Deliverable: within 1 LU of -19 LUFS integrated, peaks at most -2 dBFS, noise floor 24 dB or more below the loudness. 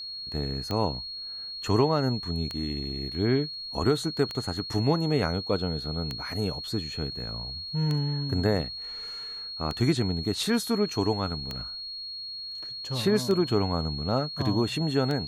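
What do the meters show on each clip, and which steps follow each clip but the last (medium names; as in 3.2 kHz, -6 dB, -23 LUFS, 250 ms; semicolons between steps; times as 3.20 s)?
clicks found 9; steady tone 4.3 kHz; tone level -35 dBFS; loudness -28.5 LUFS; peak level -11.5 dBFS; loudness target -19.0 LUFS
-> de-click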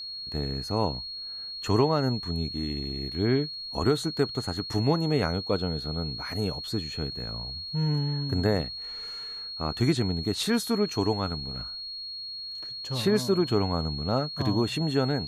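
clicks found 0; steady tone 4.3 kHz; tone level -35 dBFS
-> band-stop 4.3 kHz, Q 30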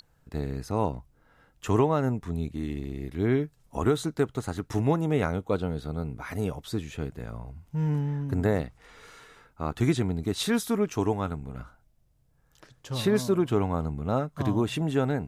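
steady tone not found; loudness -28.5 LUFS; peak level -12.0 dBFS; loudness target -19.0 LUFS
-> trim +9.5 dB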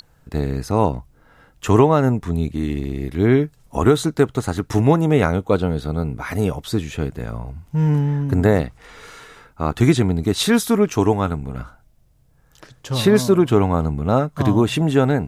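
loudness -19.0 LUFS; peak level -2.5 dBFS; noise floor -56 dBFS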